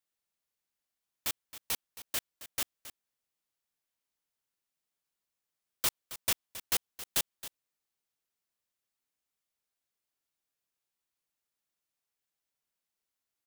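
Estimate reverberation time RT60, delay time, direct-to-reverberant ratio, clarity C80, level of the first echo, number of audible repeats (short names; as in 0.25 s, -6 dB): none, 0.27 s, none, none, -14.5 dB, 1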